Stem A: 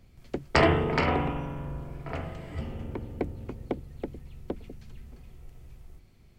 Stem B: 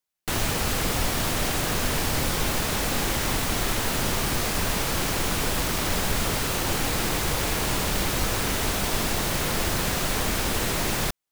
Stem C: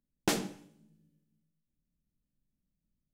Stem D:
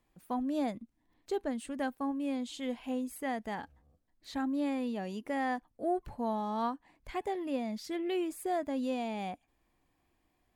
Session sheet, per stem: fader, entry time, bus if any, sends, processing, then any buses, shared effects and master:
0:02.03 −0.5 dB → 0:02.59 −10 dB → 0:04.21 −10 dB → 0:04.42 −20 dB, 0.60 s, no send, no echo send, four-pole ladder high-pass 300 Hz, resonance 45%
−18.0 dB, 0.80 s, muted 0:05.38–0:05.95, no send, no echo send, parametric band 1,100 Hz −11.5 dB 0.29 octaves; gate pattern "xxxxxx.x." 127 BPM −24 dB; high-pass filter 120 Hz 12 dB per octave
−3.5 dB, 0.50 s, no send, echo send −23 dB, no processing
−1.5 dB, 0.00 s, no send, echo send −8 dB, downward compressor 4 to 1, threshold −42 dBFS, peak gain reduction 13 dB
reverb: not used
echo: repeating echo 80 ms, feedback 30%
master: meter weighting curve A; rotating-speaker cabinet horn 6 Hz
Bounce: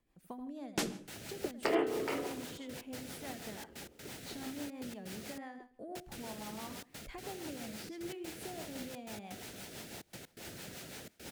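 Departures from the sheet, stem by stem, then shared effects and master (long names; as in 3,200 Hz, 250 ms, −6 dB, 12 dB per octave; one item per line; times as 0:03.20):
stem A: entry 0.60 s → 1.10 s
master: missing meter weighting curve A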